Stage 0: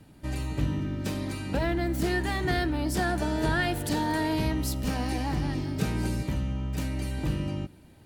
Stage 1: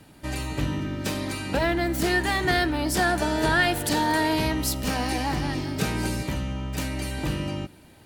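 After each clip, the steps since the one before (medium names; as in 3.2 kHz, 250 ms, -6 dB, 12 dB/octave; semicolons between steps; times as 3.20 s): bass shelf 360 Hz -8.5 dB; trim +7.5 dB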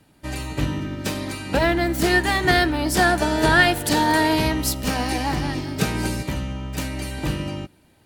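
upward expansion 1.5:1, over -43 dBFS; trim +6.5 dB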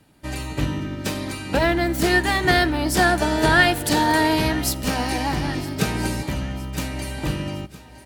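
feedback delay 962 ms, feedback 54%, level -19 dB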